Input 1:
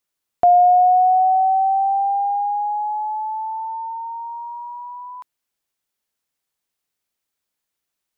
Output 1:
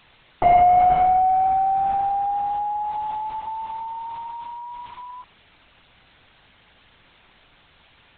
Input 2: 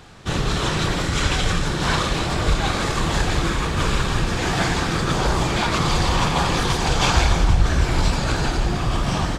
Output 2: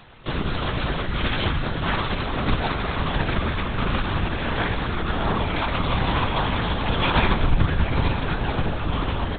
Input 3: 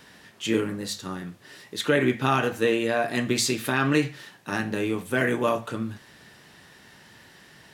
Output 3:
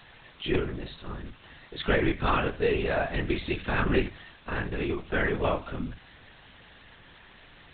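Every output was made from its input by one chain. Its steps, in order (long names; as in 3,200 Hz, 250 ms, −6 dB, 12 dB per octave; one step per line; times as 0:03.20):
harmonic generator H 3 −20 dB, 6 −41 dB, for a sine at −4 dBFS
bit-depth reduction 8 bits, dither triangular
linear-prediction vocoder at 8 kHz whisper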